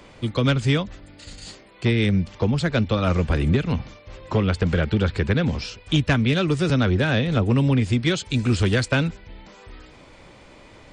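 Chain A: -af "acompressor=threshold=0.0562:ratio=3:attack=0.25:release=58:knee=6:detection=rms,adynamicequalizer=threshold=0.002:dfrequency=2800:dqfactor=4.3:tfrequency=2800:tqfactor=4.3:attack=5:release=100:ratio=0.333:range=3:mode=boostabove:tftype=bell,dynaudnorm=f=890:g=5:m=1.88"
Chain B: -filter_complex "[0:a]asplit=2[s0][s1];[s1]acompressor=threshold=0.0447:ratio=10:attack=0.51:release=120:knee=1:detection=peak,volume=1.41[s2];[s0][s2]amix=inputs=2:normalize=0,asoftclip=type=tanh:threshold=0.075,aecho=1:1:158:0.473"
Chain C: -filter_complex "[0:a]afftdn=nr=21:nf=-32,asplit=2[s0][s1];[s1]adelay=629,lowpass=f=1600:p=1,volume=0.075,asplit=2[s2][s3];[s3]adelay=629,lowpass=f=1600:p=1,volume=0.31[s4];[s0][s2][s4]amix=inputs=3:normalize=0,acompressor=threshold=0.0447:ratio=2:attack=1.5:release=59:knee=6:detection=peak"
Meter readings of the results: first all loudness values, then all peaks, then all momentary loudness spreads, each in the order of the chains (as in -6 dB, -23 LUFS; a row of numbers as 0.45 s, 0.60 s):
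-24.0 LUFS, -26.0 LUFS, -28.0 LUFS; -12.0 dBFS, -19.0 dBFS, -16.5 dBFS; 17 LU, 12 LU, 16 LU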